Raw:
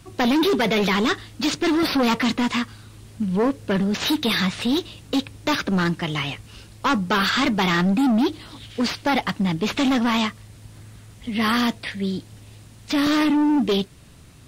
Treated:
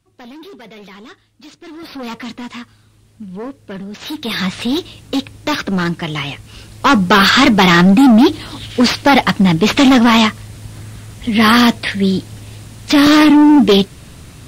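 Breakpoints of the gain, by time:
1.59 s -17 dB
2.07 s -7 dB
3.99 s -7 dB
4.47 s +4 dB
6.32 s +4 dB
7.02 s +11 dB

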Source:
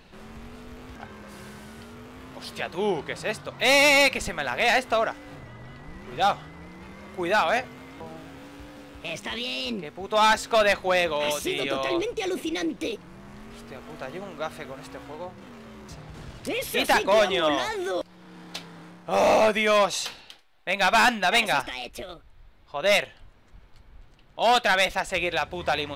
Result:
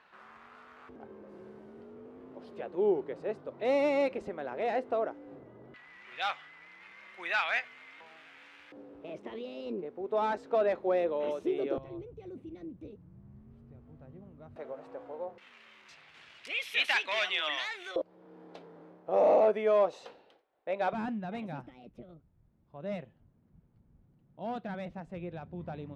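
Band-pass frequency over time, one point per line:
band-pass, Q 1.9
1300 Hz
from 0.89 s 390 Hz
from 5.74 s 2200 Hz
from 8.72 s 400 Hz
from 11.78 s 100 Hz
from 14.56 s 550 Hz
from 15.38 s 2500 Hz
from 17.96 s 470 Hz
from 20.93 s 170 Hz

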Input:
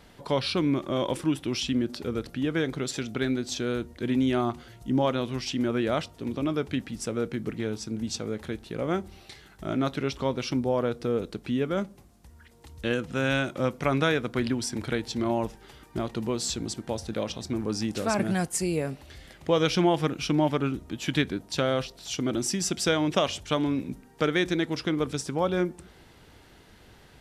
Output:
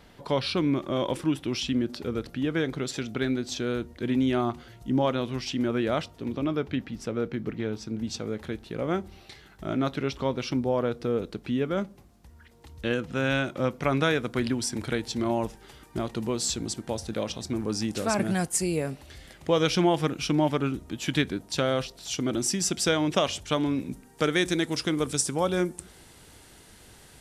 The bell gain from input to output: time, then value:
bell 9100 Hz 1.2 oct
6.08 s -3 dB
6.73 s -13 dB
7.64 s -13 dB
8.26 s -4 dB
13.74 s -4 dB
14.21 s +3.5 dB
23.67 s +3.5 dB
24.56 s +14.5 dB

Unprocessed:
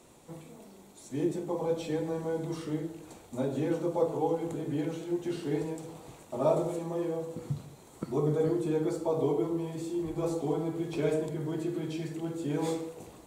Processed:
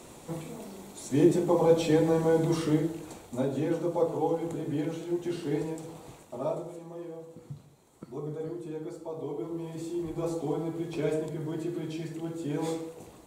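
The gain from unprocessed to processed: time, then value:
2.66 s +8.5 dB
3.57 s +1 dB
6.12 s +1 dB
6.65 s -8.5 dB
9.24 s -8.5 dB
9.79 s -0.5 dB

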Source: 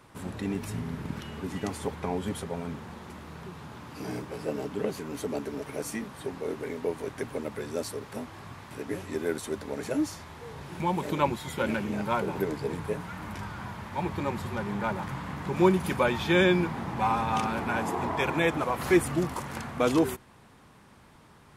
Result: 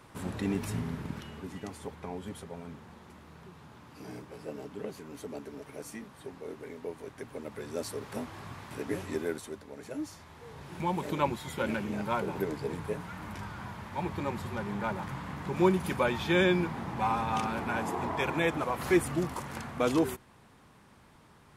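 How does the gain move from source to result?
0.76 s +0.5 dB
1.66 s -8.5 dB
7.24 s -8.5 dB
8.12 s 0 dB
9.1 s 0 dB
9.68 s -11.5 dB
10.81 s -3 dB

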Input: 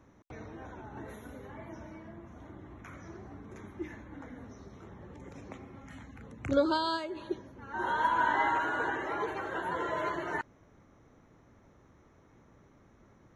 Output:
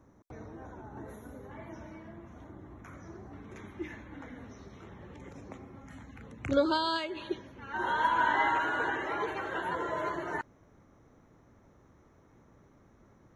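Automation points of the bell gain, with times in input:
bell 2800 Hz 1.3 oct
-9.5 dB
from 1.51 s +1 dB
from 2.44 s -5.5 dB
from 3.33 s +6 dB
from 5.32 s -4 dB
from 6.08 s +3.5 dB
from 6.96 s +10 dB
from 7.77 s +4 dB
from 9.75 s -3.5 dB

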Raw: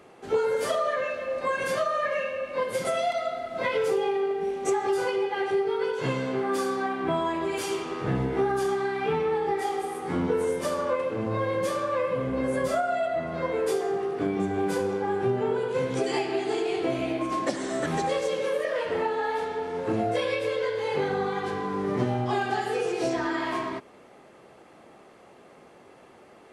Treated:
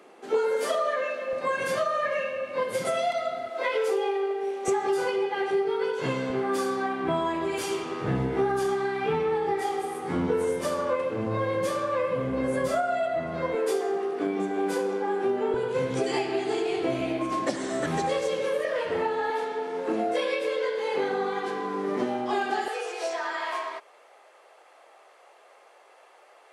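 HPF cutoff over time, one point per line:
HPF 24 dB/oct
220 Hz
from 1.33 s 92 Hz
from 3.5 s 340 Hz
from 4.68 s 130 Hz
from 6.3 s 60 Hz
from 13.55 s 220 Hz
from 15.54 s 58 Hz
from 19.3 s 220 Hz
from 22.68 s 540 Hz

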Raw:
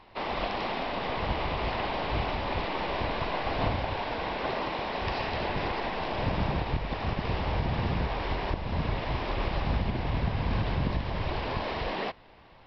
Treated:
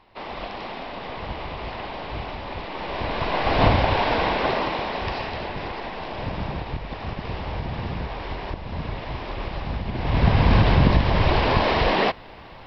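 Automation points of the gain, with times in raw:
2.66 s -2 dB
3.65 s +11 dB
4.17 s +11 dB
5.52 s -0.5 dB
9.84 s -0.5 dB
10.29 s +12 dB

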